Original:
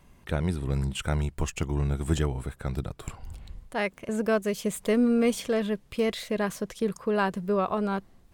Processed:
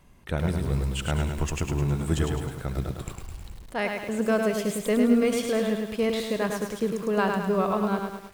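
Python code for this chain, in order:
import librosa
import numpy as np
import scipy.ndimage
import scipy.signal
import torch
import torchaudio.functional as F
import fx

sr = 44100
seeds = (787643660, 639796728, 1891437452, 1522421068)

y = x + 10.0 ** (-16.0 / 20.0) * np.pad(x, (int(72 * sr / 1000.0), 0))[:len(x)]
y = fx.echo_crushed(y, sr, ms=105, feedback_pct=55, bits=8, wet_db=-4.0)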